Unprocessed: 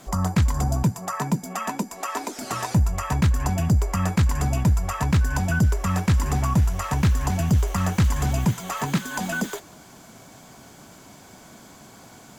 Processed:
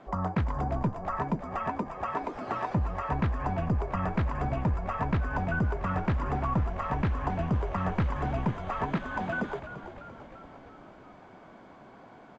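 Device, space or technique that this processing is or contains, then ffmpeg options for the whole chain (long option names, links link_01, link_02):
phone in a pocket: -filter_complex "[0:a]lowpass=3300,highshelf=frequency=2000:gain=-12,asplit=9[link_01][link_02][link_03][link_04][link_05][link_06][link_07][link_08][link_09];[link_02]adelay=342,afreqshift=-49,volume=-11.5dB[link_10];[link_03]adelay=684,afreqshift=-98,volume=-15.5dB[link_11];[link_04]adelay=1026,afreqshift=-147,volume=-19.5dB[link_12];[link_05]adelay=1368,afreqshift=-196,volume=-23.5dB[link_13];[link_06]adelay=1710,afreqshift=-245,volume=-27.6dB[link_14];[link_07]adelay=2052,afreqshift=-294,volume=-31.6dB[link_15];[link_08]adelay=2394,afreqshift=-343,volume=-35.6dB[link_16];[link_09]adelay=2736,afreqshift=-392,volume=-39.6dB[link_17];[link_01][link_10][link_11][link_12][link_13][link_14][link_15][link_16][link_17]amix=inputs=9:normalize=0,bass=frequency=250:gain=-10,treble=frequency=4000:gain=-6"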